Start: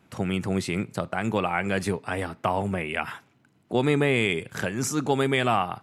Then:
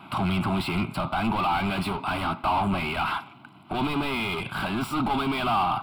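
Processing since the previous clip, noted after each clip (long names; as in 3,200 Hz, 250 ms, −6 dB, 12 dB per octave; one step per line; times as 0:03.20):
mid-hump overdrive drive 37 dB, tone 1,400 Hz, clips at −8 dBFS
phaser with its sweep stopped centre 1,800 Hz, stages 6
level −5 dB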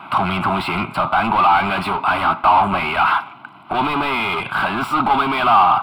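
parametric band 1,200 Hz +13 dB 2.7 octaves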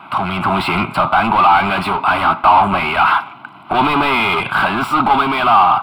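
automatic gain control
level −1 dB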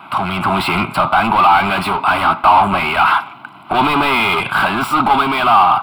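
high-shelf EQ 6,400 Hz +8 dB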